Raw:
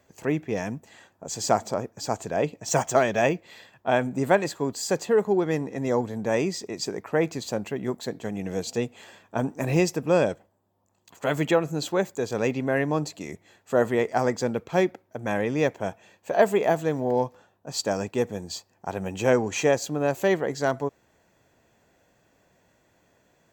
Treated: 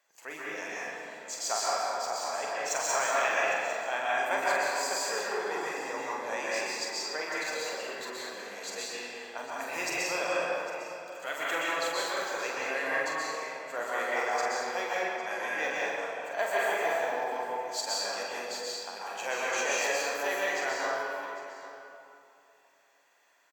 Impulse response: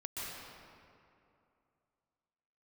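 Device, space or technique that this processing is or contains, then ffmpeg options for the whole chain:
stairwell: -filter_complex "[0:a]highpass=1000,asplit=2[s0][s1];[s1]adelay=45,volume=0.562[s2];[s0][s2]amix=inputs=2:normalize=0,aecho=1:1:803:0.158[s3];[1:a]atrim=start_sample=2205[s4];[s3][s4]afir=irnorm=-1:irlink=0"

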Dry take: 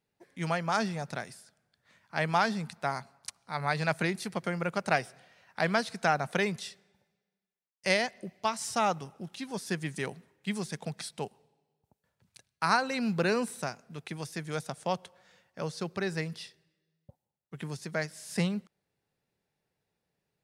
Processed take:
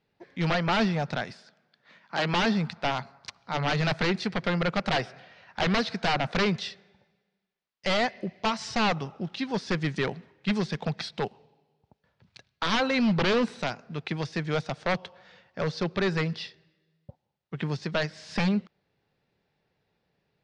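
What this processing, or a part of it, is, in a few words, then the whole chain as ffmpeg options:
synthesiser wavefolder: -filter_complex "[0:a]aeval=exprs='0.0473*(abs(mod(val(0)/0.0473+3,4)-2)-1)':c=same,lowpass=f=4800:w=0.5412,lowpass=f=4800:w=1.3066,asettb=1/sr,asplit=3[s0][s1][s2];[s0]atrim=end=1.314[s3];[s1]atrim=start=1.31:end=2.34,asetpts=PTS-STARTPTS,afade=t=in:d=0.004:c=qsin,afade=t=out:st=1.026:d=0.004:c=qsin,highpass=f=160:w=0.5412,highpass=f=160:w=1.3066[s4];[s2]atrim=start=2.336[s5];[s3][s4]acrossfade=d=0.004:c1=hsin:c2=qsin[s6];[s6][s5]acrossfade=d=0.004:c1=qsin:c2=hsin,volume=2.51"

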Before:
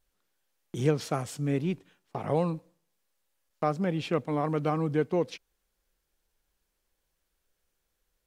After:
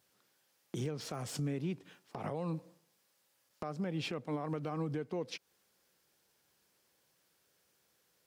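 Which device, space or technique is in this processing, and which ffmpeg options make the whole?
broadcast voice chain: -af "highpass=f=100:w=0.5412,highpass=f=100:w=1.3066,deesser=1,acompressor=threshold=0.0141:ratio=3,equalizer=f=5000:t=o:w=0.37:g=3.5,alimiter=level_in=3.55:limit=0.0631:level=0:latency=1:release=208,volume=0.282,volume=2.11"

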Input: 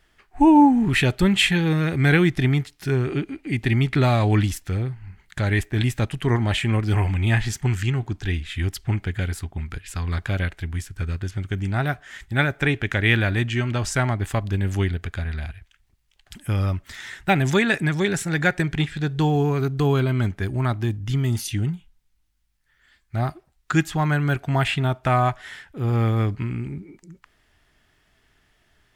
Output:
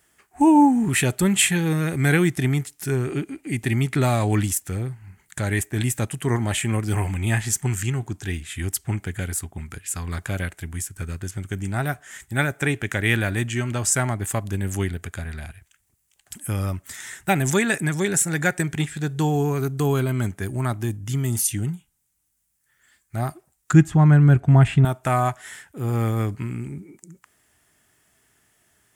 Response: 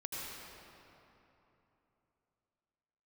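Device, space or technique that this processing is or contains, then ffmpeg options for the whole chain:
budget condenser microphone: -filter_complex "[0:a]highpass=92,highshelf=f=5900:t=q:w=1.5:g=11.5,asettb=1/sr,asplit=3[s0][s1][s2];[s0]atrim=end=23.734[s3];[s1]atrim=start=23.73:end=24.85,asetpts=PTS-STARTPTS,afade=t=in:d=0.004:c=qsin,afade=t=out:st=1.116:d=0.004:c=qsin,aemphasis=mode=reproduction:type=riaa[s4];[s2]atrim=start=24.846[s5];[s3][s4]acrossfade=d=0.004:c1=hsin:c2=qsin[s6];[s6][s5]acrossfade=d=0.004:c1=qsin:c2=hsin,volume=0.891"

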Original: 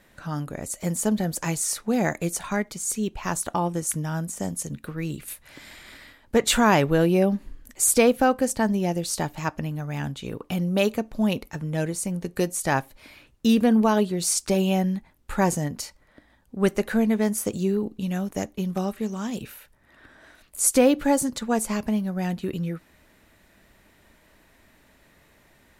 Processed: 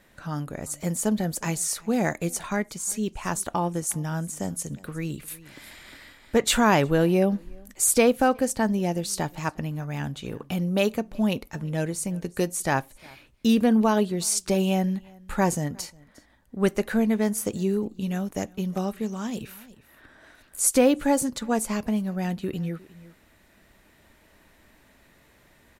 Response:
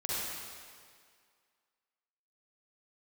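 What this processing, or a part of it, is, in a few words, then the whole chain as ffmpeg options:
ducked delay: -filter_complex "[0:a]asplit=3[s0][s1][s2];[s1]adelay=357,volume=0.501[s3];[s2]apad=whole_len=1153280[s4];[s3][s4]sidechaincompress=threshold=0.01:ratio=10:attack=9.5:release=1260[s5];[s0][s5]amix=inputs=2:normalize=0,volume=0.891"

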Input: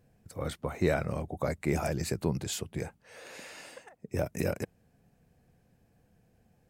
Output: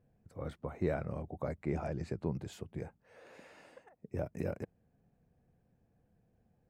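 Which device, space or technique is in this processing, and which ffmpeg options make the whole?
through cloth: -filter_complex "[0:a]asettb=1/sr,asplit=3[s0][s1][s2];[s0]atrim=end=1.554[s3];[s1]atrim=start=1.55:end=2.28,asetpts=PTS-STARTPTS,afade=t=in:d=0.004:c=qsin,afade=t=out:st=0.726:d=0.004:c=qsin,lowpass=7000[s4];[s2]atrim=start=2.276[s5];[s3][s4]acrossfade=d=0.004:c1=hsin:c2=qsin[s6];[s6][s5]acrossfade=d=0.004:c1=qsin:c2=hsin,highshelf=f=2600:g=-16,volume=0.531"

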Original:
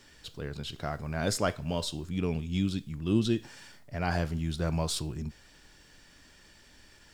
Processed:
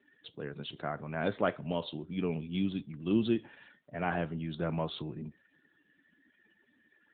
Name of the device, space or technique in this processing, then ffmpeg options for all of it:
mobile call with aggressive noise cancelling: -af "highpass=170,afftdn=nr=27:nf=-54" -ar 8000 -c:a libopencore_amrnb -b:a 10200

